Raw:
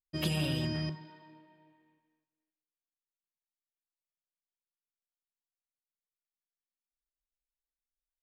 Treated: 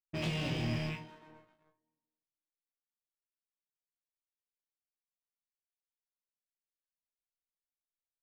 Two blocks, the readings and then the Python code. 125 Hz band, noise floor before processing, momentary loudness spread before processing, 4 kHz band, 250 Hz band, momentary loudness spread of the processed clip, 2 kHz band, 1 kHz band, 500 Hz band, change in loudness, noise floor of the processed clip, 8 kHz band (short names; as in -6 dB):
-2.5 dB, under -85 dBFS, 9 LU, -4.0 dB, -2.5 dB, 11 LU, +1.0 dB, +1.5 dB, -1.0 dB, -2.5 dB, under -85 dBFS, -5.5 dB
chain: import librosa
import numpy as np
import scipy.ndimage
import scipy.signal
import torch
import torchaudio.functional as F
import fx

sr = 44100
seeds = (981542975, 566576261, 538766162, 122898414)

y = fx.rattle_buzz(x, sr, strikes_db=-42.0, level_db=-30.0)
y = fx.notch(y, sr, hz=1400.0, q=5.9)
y = fx.env_lowpass(y, sr, base_hz=1300.0, full_db=-32.0)
y = scipy.signal.sosfilt(scipy.signal.butter(6, 8100.0, 'lowpass', fs=sr, output='sos'), y)
y = fx.high_shelf(y, sr, hz=4100.0, db=-11.0)
y = fx.leveller(y, sr, passes=3)
y = fx.room_flutter(y, sr, wall_m=3.0, rt60_s=0.23)
y = y * librosa.db_to_amplitude(-9.0)